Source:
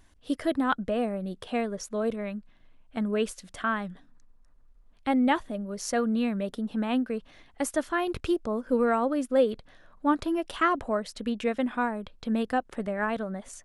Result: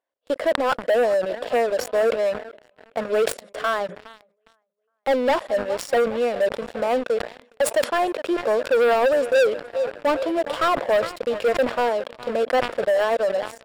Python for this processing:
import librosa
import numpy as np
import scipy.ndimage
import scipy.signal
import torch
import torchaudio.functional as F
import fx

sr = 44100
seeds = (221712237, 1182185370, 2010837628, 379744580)

y = fx.highpass_res(x, sr, hz=540.0, q=4.5)
y = fx.high_shelf(y, sr, hz=4600.0, db=-10.0)
y = fx.echo_feedback(y, sr, ms=412, feedback_pct=59, wet_db=-20.0)
y = fx.leveller(y, sr, passes=5)
y = fx.high_shelf(y, sr, hz=10000.0, db=-3.5)
y = fx.notch(y, sr, hz=6200.0, q=8.4)
y = fx.sustainer(y, sr, db_per_s=130.0)
y = y * librosa.db_to_amplitude(-11.5)